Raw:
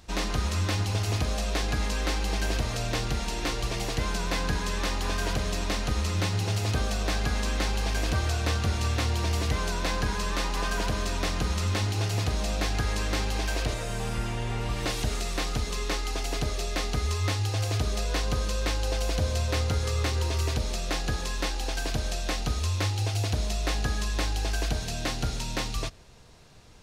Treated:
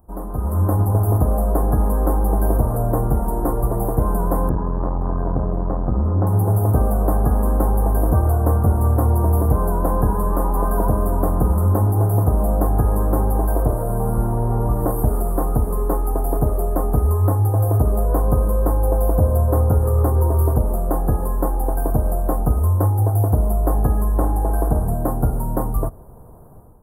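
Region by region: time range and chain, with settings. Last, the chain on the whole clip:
0:04.49–0:06.27: high-frequency loss of the air 220 metres + saturating transformer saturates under 200 Hz
0:24.17–0:24.94: low-pass filter 12,000 Hz + parametric band 3,100 Hz +9 dB 0.57 octaves + flutter between parallel walls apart 8.9 metres, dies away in 0.38 s
whole clip: inverse Chebyshev band-stop filter 2,400–6,000 Hz, stop band 60 dB; high-shelf EQ 6,900 Hz +7 dB; automatic gain control gain up to 11.5 dB

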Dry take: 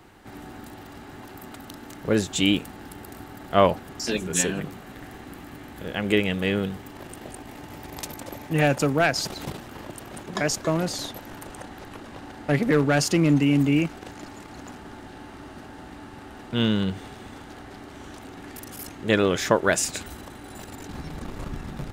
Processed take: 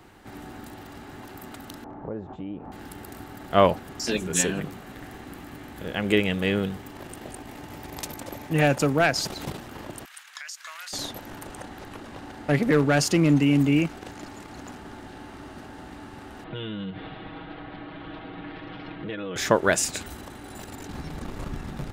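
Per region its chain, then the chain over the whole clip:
0:01.84–0:02.72: downward compressor 4 to 1, threshold −33 dBFS + low-pass with resonance 870 Hz, resonance Q 1.8
0:10.05–0:10.93: high-pass filter 1,400 Hz 24 dB per octave + downward compressor 10 to 1, threshold −34 dBFS
0:16.44–0:19.36: Butterworth low-pass 3,800 Hz 48 dB per octave + comb filter 6.3 ms, depth 92% + downward compressor, threshold −31 dBFS
whole clip: no processing

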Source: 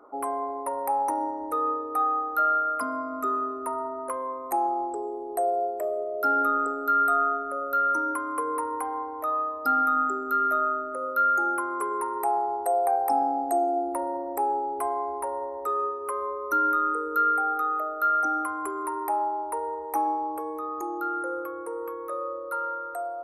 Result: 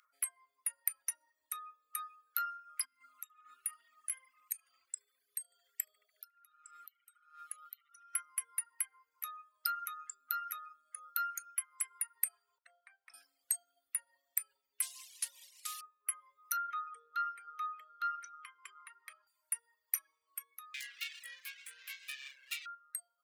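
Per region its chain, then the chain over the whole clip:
0:02.85–0:08.15: parametric band 770 Hz −13.5 dB 1.4 octaves + compressor whose output falls as the input rises −38 dBFS, ratio −0.5 + tape delay 73 ms, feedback 82%, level −11 dB, low-pass 3,800 Hz
0:12.58–0:13.14: high-pass filter 530 Hz + head-to-tape spacing loss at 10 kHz 42 dB
0:14.82–0:15.81: variable-slope delta modulation 64 kbit/s + notch filter 1,300 Hz, Q 24
0:16.57–0:19.27: high-frequency loss of the air 140 metres + hollow resonant body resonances 460/1,200/3,200 Hz, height 14 dB, ringing for 40 ms
0:20.74–0:22.66: Butterworth band-reject 1,600 Hz, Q 4.8 + double-tracking delay 19 ms −6 dB + windowed peak hold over 17 samples
whole clip: reverb reduction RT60 0.61 s; inverse Chebyshev high-pass filter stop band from 890 Hz, stop band 50 dB; reverb reduction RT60 1 s; level +7.5 dB

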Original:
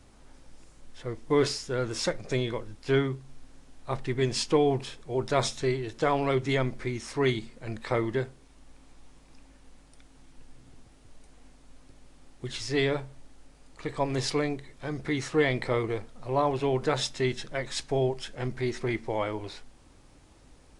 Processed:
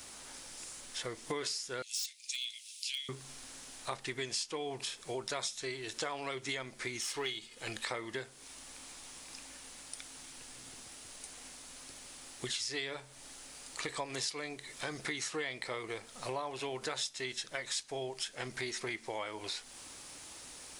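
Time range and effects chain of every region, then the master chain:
0:01.82–0:03.09: Butterworth high-pass 2,500 Hz 48 dB per octave + hard clipping −32 dBFS
0:07.01–0:07.83: gain on one half-wave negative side −3 dB + parametric band 3,100 Hz +7.5 dB 0.38 octaves + comb filter 2.4 ms, depth 30%
whole clip: spectral tilt +4 dB per octave; downward compressor 6 to 1, threshold −43 dBFS; level +6.5 dB

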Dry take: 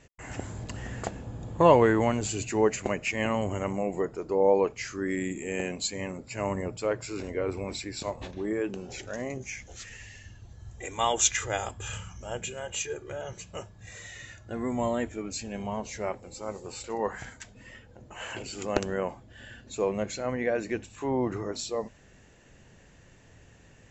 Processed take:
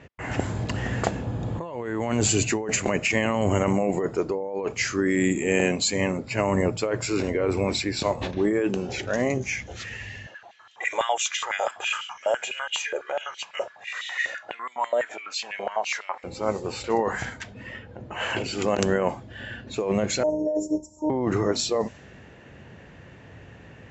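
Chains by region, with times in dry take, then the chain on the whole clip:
0:10.26–0:16.24: downward compressor 4 to 1, threshold −36 dBFS + high-pass on a step sequencer 12 Hz 570–3,200 Hz
0:20.23–0:21.10: Chebyshev band-stop filter 860–5,400 Hz, order 5 + comb filter 2 ms, depth 51% + phases set to zero 306 Hz
whole clip: high-pass filter 72 Hz; low-pass that shuts in the quiet parts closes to 2,700 Hz, open at −25.5 dBFS; compressor whose output falls as the input rises −31 dBFS, ratio −1; level +7.5 dB

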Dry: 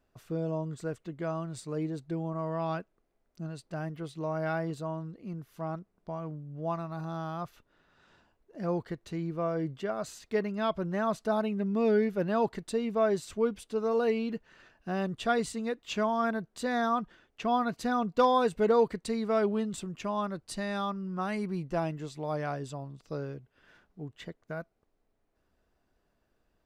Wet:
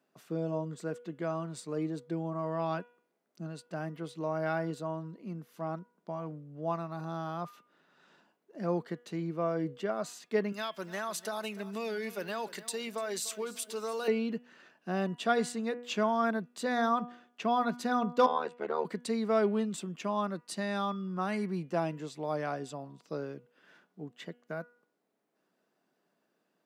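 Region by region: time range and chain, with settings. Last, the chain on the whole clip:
0:10.52–0:14.08: spectral tilt +4.5 dB per octave + downward compressor 10 to 1, threshold −31 dBFS + repeating echo 296 ms, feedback 40%, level −17 dB
0:18.26–0:18.85: resonant band-pass 1,300 Hz, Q 0.7 + amplitude modulation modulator 77 Hz, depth 95%
whole clip: Butterworth high-pass 160 Hz; hum removal 242.3 Hz, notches 14

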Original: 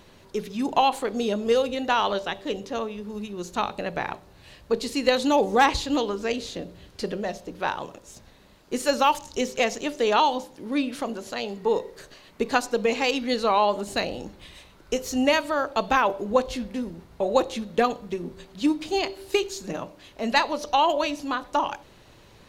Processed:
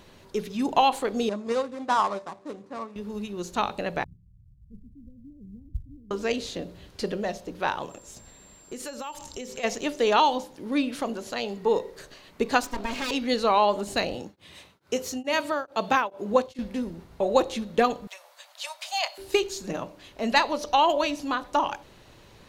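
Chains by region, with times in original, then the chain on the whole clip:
0:01.29–0:02.96: running median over 25 samples + loudspeaker in its box 130–9,900 Hz, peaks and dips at 450 Hz −6 dB, 1,100 Hz +9 dB, 3,000 Hz −6 dB + expander for the loud parts, over −35 dBFS
0:04.04–0:06.11: inverse Chebyshev low-pass filter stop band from 880 Hz, stop band 80 dB + floating-point word with a short mantissa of 6 bits
0:07.89–0:09.63: downward compressor 8 to 1, threshold −33 dBFS + steady tone 7,400 Hz −52 dBFS
0:12.63–0:13.11: lower of the sound and its delayed copy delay 3.2 ms + downward compressor 1.5 to 1, threshold −30 dBFS
0:14.15–0:16.59: high-pass filter 80 Hz 24 dB per octave + tremolo along a rectified sine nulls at 2.3 Hz
0:18.07–0:19.18: Butterworth high-pass 570 Hz 72 dB per octave + high-shelf EQ 6,000 Hz +6.5 dB
whole clip: no processing

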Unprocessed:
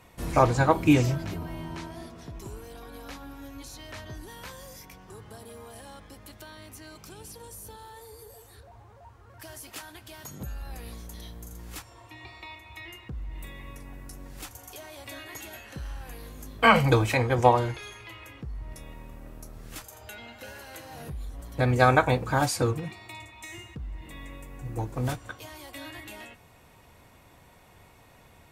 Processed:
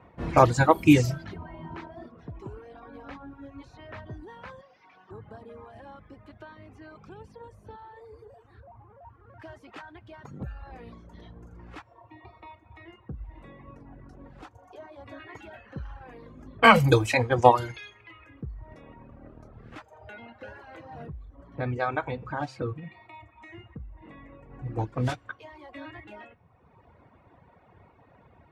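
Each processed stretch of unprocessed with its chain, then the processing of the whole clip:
0:04.61–0:05.11: linear delta modulator 32 kbit/s, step −59.5 dBFS + spectral tilt +4.5 dB per octave
0:11.93–0:15.20: dynamic equaliser 2,300 Hz, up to −6 dB, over −59 dBFS, Q 1.1 + mains-hum notches 60/120/180/240/300/360/420 Hz
0:21.06–0:24.50: high-shelf EQ 6,100 Hz −6.5 dB + hum removal 131.9 Hz, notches 35 + downward compressor 1.5 to 1, threshold −42 dBFS
whole clip: reverb reduction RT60 1.4 s; high-pass filter 63 Hz; low-pass that shuts in the quiet parts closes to 1,400 Hz, open at −20 dBFS; level +3 dB

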